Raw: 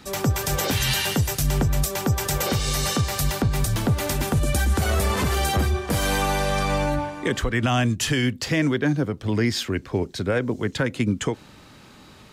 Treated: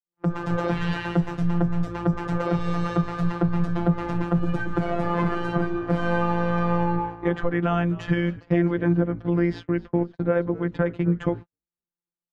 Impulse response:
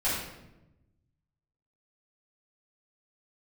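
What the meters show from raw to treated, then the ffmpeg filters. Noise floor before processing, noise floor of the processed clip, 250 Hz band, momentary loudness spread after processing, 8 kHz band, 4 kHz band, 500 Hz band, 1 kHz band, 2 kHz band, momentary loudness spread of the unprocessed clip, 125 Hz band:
−48 dBFS, below −85 dBFS, +2.0 dB, 3 LU, below −25 dB, −16.0 dB, 0.0 dB, −1.0 dB, −5.0 dB, 4 LU, −1.5 dB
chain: -filter_complex "[0:a]afftfilt=real='hypot(re,im)*cos(PI*b)':imag='0':win_size=1024:overlap=0.75,lowpass=1300,asplit=2[link_01][link_02];[link_02]asplit=3[link_03][link_04][link_05];[link_03]adelay=259,afreqshift=-59,volume=-19.5dB[link_06];[link_04]adelay=518,afreqshift=-118,volume=-26.6dB[link_07];[link_05]adelay=777,afreqshift=-177,volume=-33.8dB[link_08];[link_06][link_07][link_08]amix=inputs=3:normalize=0[link_09];[link_01][link_09]amix=inputs=2:normalize=0,dynaudnorm=framelen=170:gausssize=3:maxgain=12dB,agate=range=-56dB:threshold=-26dB:ratio=16:detection=peak,volume=-5.5dB"

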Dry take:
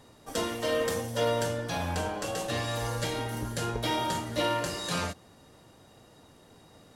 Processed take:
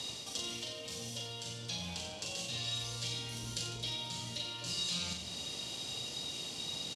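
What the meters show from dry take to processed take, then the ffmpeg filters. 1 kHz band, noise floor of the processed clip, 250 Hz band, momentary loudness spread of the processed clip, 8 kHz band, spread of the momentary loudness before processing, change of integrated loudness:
−17.5 dB, −45 dBFS, −12.5 dB, 5 LU, −1.0 dB, 5 LU, −7.0 dB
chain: -filter_complex "[0:a]lowpass=4900,alimiter=limit=-24dB:level=0:latency=1,highpass=95,lowshelf=frequency=120:gain=4,areverse,acompressor=threshold=-44dB:ratio=6,areverse,bandreject=frequency=50:width_type=h:width=6,bandreject=frequency=100:width_type=h:width=6,bandreject=frequency=150:width_type=h:width=6,bandreject=frequency=200:width_type=h:width=6,bandreject=frequency=250:width_type=h:width=6,bandreject=frequency=300:width_type=h:width=6,acrossover=split=210[link_01][link_02];[link_02]acompressor=threshold=-56dB:ratio=6[link_03];[link_01][link_03]amix=inputs=2:normalize=0,aexciter=amount=10.8:drive=4.4:freq=2500,aecho=1:1:40|90|152.5|230.6|328.3:0.631|0.398|0.251|0.158|0.1,volume=5dB"

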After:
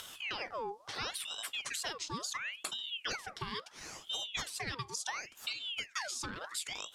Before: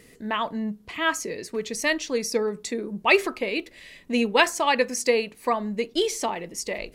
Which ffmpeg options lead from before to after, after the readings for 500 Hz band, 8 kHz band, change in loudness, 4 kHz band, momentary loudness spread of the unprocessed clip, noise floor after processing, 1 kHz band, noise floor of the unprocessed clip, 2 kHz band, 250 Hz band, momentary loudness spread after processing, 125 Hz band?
−23.0 dB, −8.0 dB, −13.5 dB, −6.0 dB, 11 LU, −59 dBFS, −15.5 dB, −53 dBFS, −14.0 dB, −23.0 dB, 4 LU, can't be measured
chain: -af "highshelf=frequency=3100:width_type=q:width=1.5:gain=7.5,bandreject=frequency=1300:width=12,acompressor=mode=upward:threshold=-34dB:ratio=2.5,lowpass=9100,asoftclip=type=hard:threshold=-8dB,acompressor=threshold=-30dB:ratio=10,aeval=exprs='val(0)*sin(2*PI*2000*n/s+2000*0.7/0.72*sin(2*PI*0.72*n/s))':channel_layout=same,volume=-3dB"

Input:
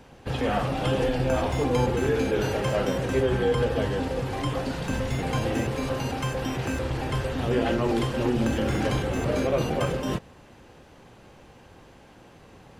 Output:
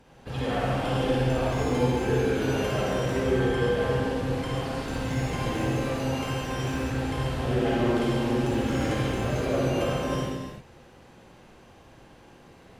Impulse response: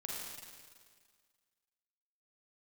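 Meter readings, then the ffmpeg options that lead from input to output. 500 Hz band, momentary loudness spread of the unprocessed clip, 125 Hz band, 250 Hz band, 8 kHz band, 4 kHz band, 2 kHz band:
−1.0 dB, 5 LU, 0.0 dB, 0.0 dB, −1.0 dB, −0.5 dB, 0.0 dB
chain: -filter_complex "[1:a]atrim=start_sample=2205,afade=type=out:start_time=0.4:duration=0.01,atrim=end_sample=18081,asetrate=34839,aresample=44100[link_01];[0:a][link_01]afir=irnorm=-1:irlink=0,volume=-2.5dB"

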